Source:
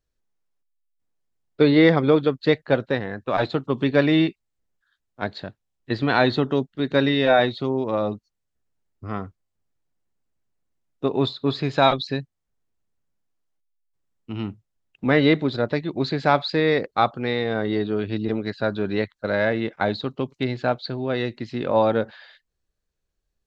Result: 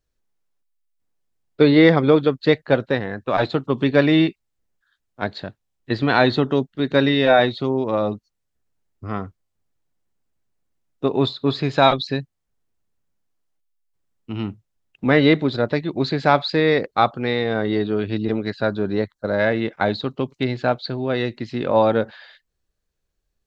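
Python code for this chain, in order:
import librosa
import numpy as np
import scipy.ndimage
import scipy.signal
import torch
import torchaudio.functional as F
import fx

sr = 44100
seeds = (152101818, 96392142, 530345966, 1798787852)

y = fx.peak_eq(x, sr, hz=2600.0, db=fx.line((18.7, -7.0), (19.38, -13.0)), octaves=1.2, at=(18.7, 19.38), fade=0.02)
y = y * 10.0 ** (2.5 / 20.0)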